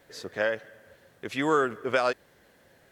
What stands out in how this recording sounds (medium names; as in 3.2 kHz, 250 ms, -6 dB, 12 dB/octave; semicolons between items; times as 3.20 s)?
a quantiser's noise floor 12-bit, dither triangular; Vorbis